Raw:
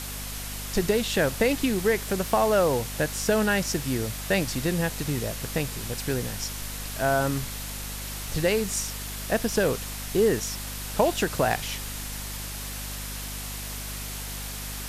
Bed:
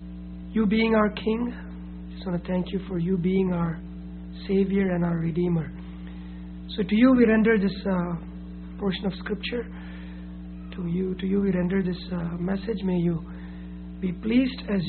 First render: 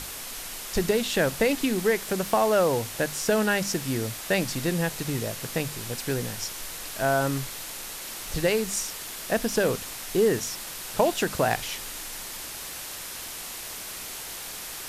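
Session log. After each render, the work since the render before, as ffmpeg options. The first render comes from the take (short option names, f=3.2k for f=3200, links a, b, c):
-af "bandreject=f=50:t=h:w=6,bandreject=f=100:t=h:w=6,bandreject=f=150:t=h:w=6,bandreject=f=200:t=h:w=6,bandreject=f=250:t=h:w=6"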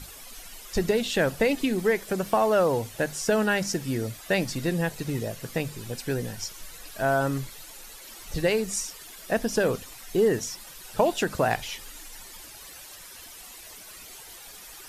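-af "afftdn=nr=12:nf=-38"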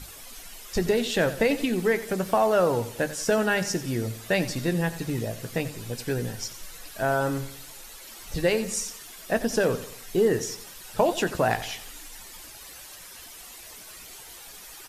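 -filter_complex "[0:a]asplit=2[a][b];[b]adelay=17,volume=-12.5dB[c];[a][c]amix=inputs=2:normalize=0,aecho=1:1:90|180|270|360:0.188|0.081|0.0348|0.015"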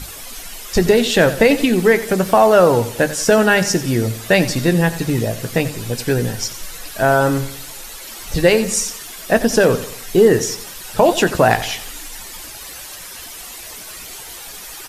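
-af "volume=10.5dB,alimiter=limit=-1dB:level=0:latency=1"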